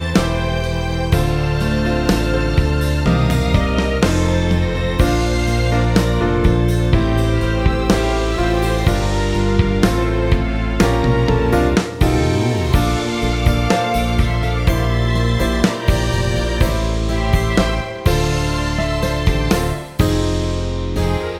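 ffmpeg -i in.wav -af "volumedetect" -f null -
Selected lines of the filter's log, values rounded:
mean_volume: -15.9 dB
max_volume: -2.2 dB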